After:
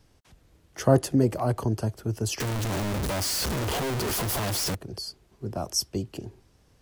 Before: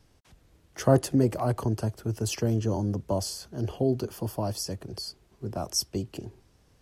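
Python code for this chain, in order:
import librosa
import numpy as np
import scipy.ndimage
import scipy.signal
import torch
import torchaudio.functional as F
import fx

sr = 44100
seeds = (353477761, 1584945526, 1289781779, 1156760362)

y = fx.clip_1bit(x, sr, at=(2.4, 4.75))
y = F.gain(torch.from_numpy(y), 1.0).numpy()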